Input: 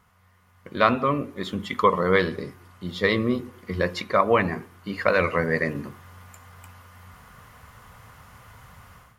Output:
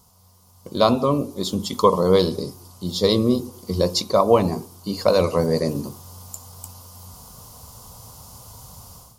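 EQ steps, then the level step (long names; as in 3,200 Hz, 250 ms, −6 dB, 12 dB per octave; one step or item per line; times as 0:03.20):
drawn EQ curve 940 Hz 0 dB, 1,800 Hz −23 dB, 4,800 Hz +11 dB
+5.0 dB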